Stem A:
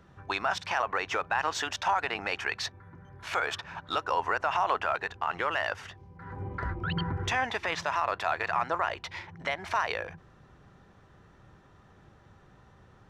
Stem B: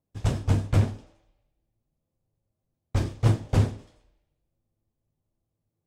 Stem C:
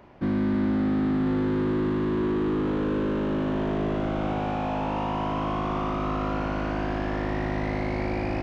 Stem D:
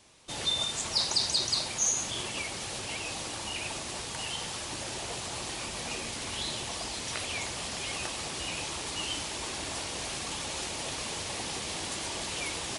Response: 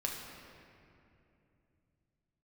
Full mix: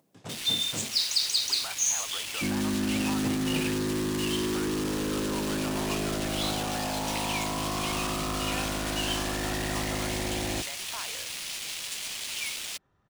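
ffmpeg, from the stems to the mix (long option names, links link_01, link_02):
-filter_complex "[0:a]adelay=1200,volume=-13.5dB[link_01];[1:a]highpass=frequency=160:width=0.5412,highpass=frequency=160:width=1.3066,volume=-9.5dB[link_02];[2:a]equalizer=frequency=1800:width=5.2:gain=5.5,adelay=2200,volume=-4.5dB[link_03];[3:a]highpass=frequency=1000:width=0.5412,highpass=frequency=1000:width=1.3066,highshelf=frequency=1700:width_type=q:width=1.5:gain=10.5,acrusher=bits=3:mix=0:aa=0.5,volume=-10dB[link_04];[link_01][link_02][link_03][link_04]amix=inputs=4:normalize=0,acompressor=mode=upward:threshold=-51dB:ratio=2.5"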